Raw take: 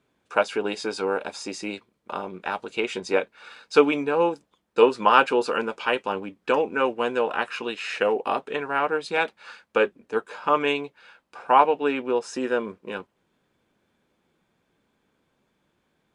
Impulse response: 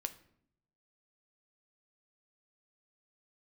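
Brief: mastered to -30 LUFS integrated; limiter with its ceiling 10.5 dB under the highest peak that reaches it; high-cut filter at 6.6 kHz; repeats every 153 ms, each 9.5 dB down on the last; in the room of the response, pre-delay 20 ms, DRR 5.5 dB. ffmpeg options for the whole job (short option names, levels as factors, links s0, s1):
-filter_complex "[0:a]lowpass=6600,alimiter=limit=0.211:level=0:latency=1,aecho=1:1:153|306|459|612:0.335|0.111|0.0365|0.012,asplit=2[s0][s1];[1:a]atrim=start_sample=2205,adelay=20[s2];[s1][s2]afir=irnorm=-1:irlink=0,volume=0.596[s3];[s0][s3]amix=inputs=2:normalize=0,volume=0.631"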